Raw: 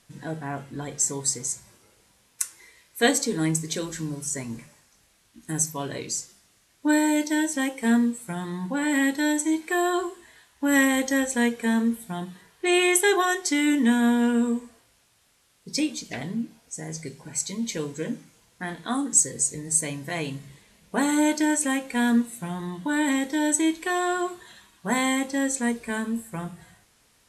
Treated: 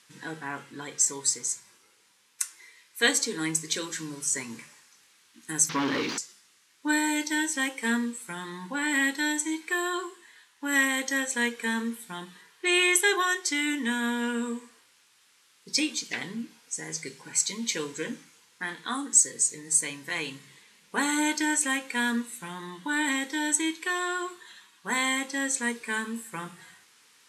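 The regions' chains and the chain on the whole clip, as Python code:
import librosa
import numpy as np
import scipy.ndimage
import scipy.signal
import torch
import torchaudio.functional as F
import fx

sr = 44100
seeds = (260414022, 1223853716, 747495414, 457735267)

y = fx.chain(x, sr, fx.delta_mod(bps=32000, step_db=-46.5),
    fx.peak_eq(hz=270.0, db=10.0, octaves=0.35),
    fx.leveller(passes=3), at=(5.69, 6.18))
y = fx.weighting(y, sr, curve='A')
y = fx.rider(y, sr, range_db=4, speed_s=2.0)
y = fx.peak_eq(y, sr, hz=650.0, db=-14.5, octaves=0.41)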